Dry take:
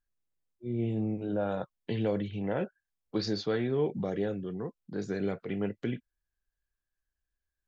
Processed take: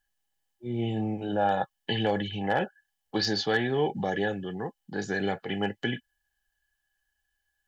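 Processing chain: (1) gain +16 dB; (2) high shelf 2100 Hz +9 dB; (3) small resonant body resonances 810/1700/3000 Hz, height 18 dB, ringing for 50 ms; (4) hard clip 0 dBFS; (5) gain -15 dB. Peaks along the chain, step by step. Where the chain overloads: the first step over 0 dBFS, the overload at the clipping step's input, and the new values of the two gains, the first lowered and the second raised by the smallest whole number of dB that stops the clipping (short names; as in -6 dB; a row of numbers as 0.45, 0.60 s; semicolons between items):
-1.5, +1.0, +3.0, 0.0, -15.0 dBFS; step 2, 3.0 dB; step 1 +13 dB, step 5 -12 dB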